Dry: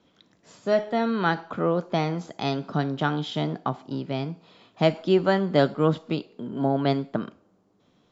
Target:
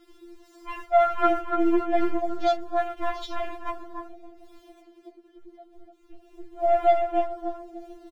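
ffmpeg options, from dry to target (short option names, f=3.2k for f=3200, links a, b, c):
-filter_complex "[0:a]aeval=exprs='val(0)+0.5*0.0562*sgn(val(0))':c=same,asettb=1/sr,asplit=3[a][b][c];[a]atrim=end=4.044[d];[b]atrim=start=4.04:end=6.34,asetpts=PTS-STARTPTS,afade=t=in:d=0.004:c=qsin,afade=t=out:st=2.296:d=0.004:c=qsin,acompressor=threshold=-29dB:ratio=5[e];[c]atrim=start=6.336[f];[d][e]acrossfade=d=0.004:c1=hsin:c2=qsin[g];[g][f]acrossfade=d=0.004:c1=qsin:c2=hsin,lowshelf=f=120:g=11,bandreject=f=45.07:t=h:w=4,bandreject=f=90.14:t=h:w=4,bandreject=f=135.21:t=h:w=4,bandreject=f=180.28:t=h:w=4,bandreject=f=225.35:t=h:w=4,bandreject=f=270.42:t=h:w=4,agate=range=-11dB:threshold=-22dB:ratio=16:detection=peak,equalizer=f=2.1k:w=0.31:g=3.5,asplit=2[h][i];[i]adelay=291,lowpass=f=2.6k:p=1,volume=-4.5dB,asplit=2[j][k];[k]adelay=291,lowpass=f=2.6k:p=1,volume=0.41,asplit=2[l][m];[m]adelay=291,lowpass=f=2.6k:p=1,volume=0.41,asplit=2[n][o];[o]adelay=291,lowpass=f=2.6k:p=1,volume=0.41,asplit=2[p][q];[q]adelay=291,lowpass=f=2.6k:p=1,volume=0.41[r];[h][j][l][n][p][r]amix=inputs=6:normalize=0,afwtdn=0.0251,afftfilt=real='re*4*eq(mod(b,16),0)':imag='im*4*eq(mod(b,16),0)':win_size=2048:overlap=0.75,volume=-3dB"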